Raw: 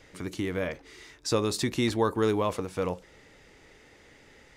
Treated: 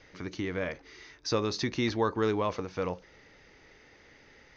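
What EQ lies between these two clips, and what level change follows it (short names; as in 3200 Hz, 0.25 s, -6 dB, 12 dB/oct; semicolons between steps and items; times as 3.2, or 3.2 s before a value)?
rippled Chebyshev low-pass 6400 Hz, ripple 3 dB; 0.0 dB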